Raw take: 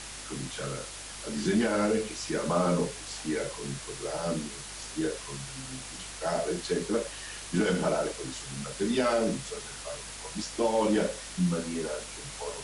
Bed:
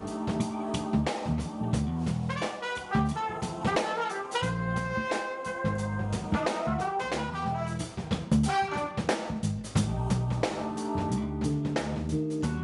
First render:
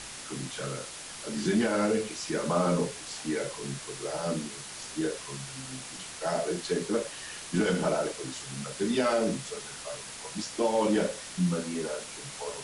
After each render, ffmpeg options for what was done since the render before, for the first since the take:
-af "bandreject=f=50:t=h:w=4,bandreject=f=100:t=h:w=4"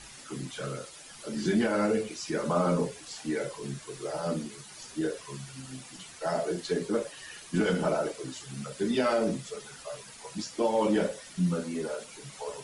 -af "afftdn=nr=11:nf=-43"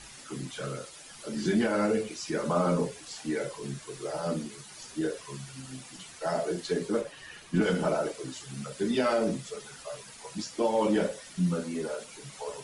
-filter_complex "[0:a]asettb=1/sr,asplit=3[a][b][c];[a]atrim=end=7.014[d];[b]atrim=start=7.01:end=7.62,asetpts=PTS-STARTPTS,afade=t=in:d=0.004:c=qsin,afade=t=out:st=0.606:d=0.004:c=qsin,bass=f=250:g=3,treble=f=4k:g=-7[e];[c]atrim=start=7.616[f];[d][e]acrossfade=d=0.004:c1=hsin:c2=qsin[g];[g][f]acrossfade=d=0.004:c1=qsin:c2=hsin"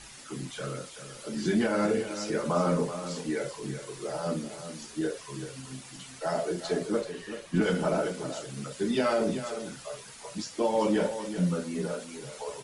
-af "aecho=1:1:382:0.299"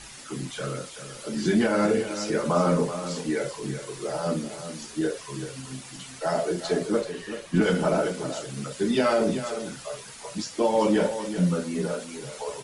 -af "volume=4dB"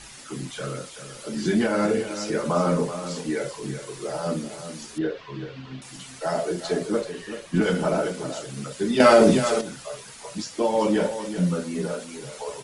-filter_complex "[0:a]asettb=1/sr,asplit=3[a][b][c];[a]atrim=end=4.984[d];[b]atrim=start=4.98:end=5.82,asetpts=PTS-STARTPTS,afade=t=in:d=0.004:c=qsin,afade=t=out:st=0.836:d=0.004:c=qsin,lowpass=f=3.8k:w=0.5412,lowpass=f=3.8k:w=1.3066[e];[c]atrim=start=5.816[f];[d][e]acrossfade=d=0.004:c1=hsin:c2=qsin[g];[g][f]acrossfade=d=0.004:c1=qsin:c2=hsin,asplit=3[h][i][j];[h]atrim=end=9.002[k];[i]atrim=start=8.998:end=9.612,asetpts=PTS-STARTPTS,volume=8.5dB[l];[j]atrim=start=9.608[m];[k][l]acrossfade=d=0.004:c1=hsin:c2=hsin[n];[n][m]acrossfade=d=0.004:c1=hsin:c2=hsin"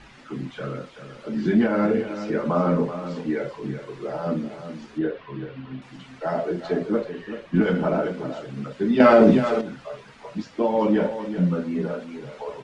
-af "lowpass=2.5k,equalizer=f=240:w=2.3:g=4.5"

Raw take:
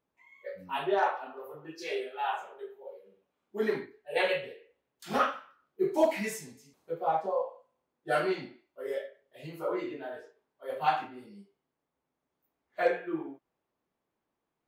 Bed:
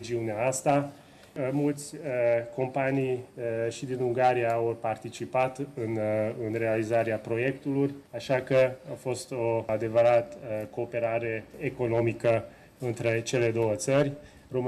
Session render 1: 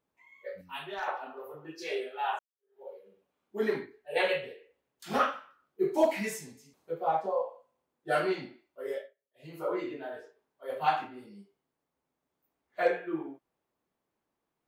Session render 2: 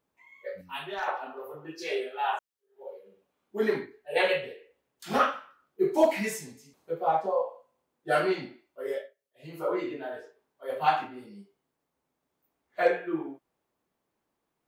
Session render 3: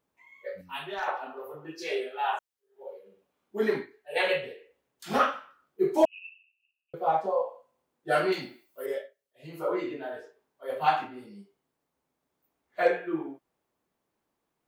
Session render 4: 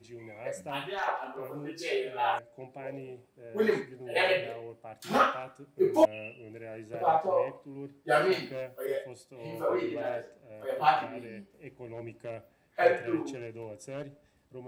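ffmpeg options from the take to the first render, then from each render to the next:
-filter_complex "[0:a]asettb=1/sr,asplit=3[a][b][c];[a]atrim=end=0.614[d];[b]atrim=start=0.61:end=1.08,asetpts=PTS-STARTPTS,afade=t=in:d=0.004:c=qsin,afade=t=out:st=0.466:d=0.004:c=qsin,equalizer=f=470:w=0.54:g=-15[e];[c]atrim=start=1.076[f];[d][e]acrossfade=d=0.004:c1=hsin:c2=qsin[g];[g][f]acrossfade=d=0.004:c1=qsin:c2=hsin,asplit=4[h][i][j][k];[h]atrim=end=2.39,asetpts=PTS-STARTPTS,afade=t=out:st=2.386:d=0.004:c=hsin[l];[i]atrim=start=2.39:end=9.15,asetpts=PTS-STARTPTS,afade=t=in:d=0.42:c=exp,afade=t=out:st=6.51:d=0.25:silence=0.0891251[m];[j]atrim=start=9.15:end=9.34,asetpts=PTS-STARTPTS,volume=-21dB[n];[k]atrim=start=9.34,asetpts=PTS-STARTPTS,afade=t=in:d=0.25:silence=0.0891251[o];[l][m][n][o]concat=n=4:v=0:a=1"
-af "volume=3dB"
-filter_complex "[0:a]asettb=1/sr,asplit=3[a][b][c];[a]atrim=end=3.824[d];[b]atrim=start=3.82:end=4.27,asetpts=PTS-STARTPTS,afade=t=in:d=0.004:c=qsin,afade=t=out:st=0.446:d=0.004:c=qsin,lowshelf=f=430:g=-8.5[e];[c]atrim=start=4.266[f];[d][e]acrossfade=d=0.004:c1=hsin:c2=qsin[g];[g][f]acrossfade=d=0.004:c1=qsin:c2=hsin,asettb=1/sr,asplit=3[h][i][j];[h]atrim=end=6.054[k];[i]atrim=start=6.05:end=6.94,asetpts=PTS-STARTPTS,afade=t=in:d=0.004:c=qsin,afade=t=out:st=0.886:d=0.004:c=qsin,asuperpass=centerf=2700:order=8:qfactor=7.6[l];[j]atrim=start=6.936[m];[k][l]acrossfade=d=0.004:c1=hsin:c2=qsin[n];[n][m]acrossfade=d=0.004:c1=qsin:c2=hsin,asettb=1/sr,asplit=3[o][p][q];[o]atrim=end=8.324[r];[p]atrim=start=8.32:end=8.86,asetpts=PTS-STARTPTS,afade=t=in:d=0.004:c=qsin,afade=t=out:st=0.536:d=0.004:c=qsin,aemphasis=mode=production:type=75fm[s];[q]atrim=start=8.856[t];[r][s]acrossfade=d=0.004:c1=hsin:c2=qsin[u];[u][t]acrossfade=d=0.004:c1=qsin:c2=hsin"
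-filter_complex "[1:a]volume=-16dB[a];[0:a][a]amix=inputs=2:normalize=0"

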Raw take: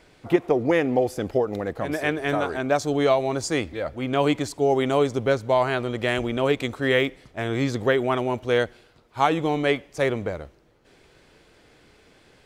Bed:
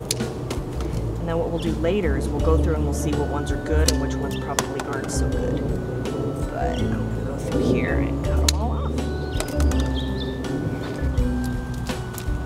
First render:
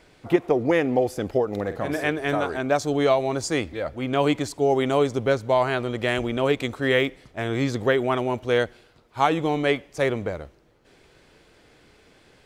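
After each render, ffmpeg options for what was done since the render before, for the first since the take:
-filter_complex "[0:a]asettb=1/sr,asplit=3[a][b][c];[a]atrim=end=1.524[d];[b]atrim=start=1.52:end=2.04,asetpts=PTS-STARTPTS,afade=t=in:d=0.004:c=qsin,afade=t=out:st=0.516:d=0.004:c=qsin,asplit=2[e][f];[f]adelay=49,volume=-9.5dB[g];[e][g]amix=inputs=2:normalize=0,atrim=end_sample=22932[h];[c]atrim=start=2.036[i];[d][h]acrossfade=d=0.004:c1=hsin:c2=qsin[j];[j][i]acrossfade=d=0.004:c1=qsin:c2=hsin"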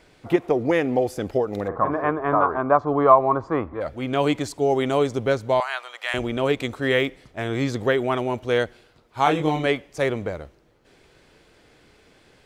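-filter_complex "[0:a]asplit=3[a][b][c];[a]afade=t=out:st=1.67:d=0.02[d];[b]lowpass=f=1.1k:t=q:w=7.4,afade=t=in:st=1.67:d=0.02,afade=t=out:st=3.8:d=0.02[e];[c]afade=t=in:st=3.8:d=0.02[f];[d][e][f]amix=inputs=3:normalize=0,asettb=1/sr,asplit=3[g][h][i];[g]atrim=end=5.604[j];[h]atrim=start=5.6:end=6.14,asetpts=PTS-STARTPTS,afade=t=in:d=0.004:c=qsin,afade=t=out:st=0.536:d=0.004:c=qsin,highpass=f=830:w=0.5412,highpass=f=830:w=1.3066[k];[i]atrim=start=6.136[l];[j][k]acrossfade=d=0.004:c1=hsin:c2=qsin[m];[m][l]acrossfade=d=0.004:c1=qsin:c2=hsin,asettb=1/sr,asplit=3[n][o][p];[n]atrim=end=9.244[q];[o]atrim=start=9.24:end=9.66,asetpts=PTS-STARTPTS,afade=t=in:d=0.004:c=qsin,afade=t=out:st=0.416:d=0.004:c=qsin,asplit=2[r][s];[s]adelay=26,volume=-3dB[t];[r][t]amix=inputs=2:normalize=0,atrim=end_sample=18522[u];[p]atrim=start=9.656[v];[q][u]acrossfade=d=0.004:c1=hsin:c2=qsin[w];[w][v]acrossfade=d=0.004:c1=qsin:c2=hsin"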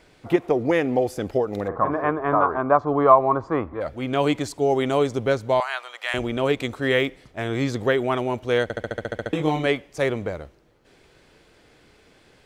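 -filter_complex "[0:a]asplit=11[a][b][c][d][e][f][g][h][i][j][k];[a]atrim=end=8.702[l];[b]atrim=start=8.628:end=8.702[m];[c]atrim=start=8.628:end=8.702[n];[d]atrim=start=8.628:end=8.702[o];[e]atrim=start=8.628:end=8.702[p];[f]atrim=start=8.628:end=8.702[q];[g]atrim=start=8.628:end=8.702[r];[h]atrim=start=8.628:end=8.702[s];[i]atrim=start=8.628:end=8.702[t];[j]atrim=start=8.628:end=8.702[u];[k]atrim=start=9.328[v];[l][m]acrossfade=d=0.004:c1=hsin:c2=hsin[w];[w][n]acrossfade=d=0.004:c1=hsin:c2=hsin[x];[x][o]acrossfade=d=0.004:c1=hsin:c2=hsin[y];[y][p]acrossfade=d=0.004:c1=hsin:c2=hsin[z];[z][q]acrossfade=d=0.004:c1=hsin:c2=hsin[aa];[aa][r]acrossfade=d=0.004:c1=hsin:c2=hsin[ab];[ab][s]acrossfade=d=0.004:c1=hsin:c2=hsin[ac];[ac][t]acrossfade=d=0.004:c1=hsin:c2=hsin[ad];[ad][u]acrossfade=d=0.004:c1=hsin:c2=hsin[ae];[ae][v]acrossfade=d=0.004:c1=hsin:c2=hsin"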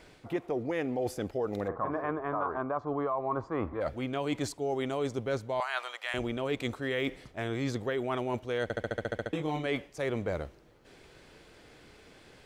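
-af "alimiter=limit=-12dB:level=0:latency=1:release=122,areverse,acompressor=threshold=-29dB:ratio=6,areverse"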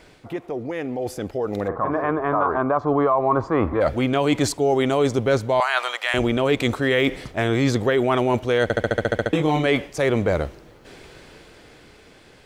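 -filter_complex "[0:a]asplit=2[a][b];[b]alimiter=level_in=5dB:limit=-24dB:level=0:latency=1:release=87,volume=-5dB,volume=-1.5dB[c];[a][c]amix=inputs=2:normalize=0,dynaudnorm=f=330:g=11:m=9.5dB"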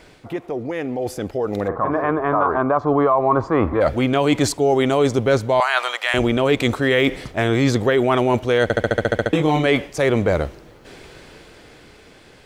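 -af "volume=2.5dB"

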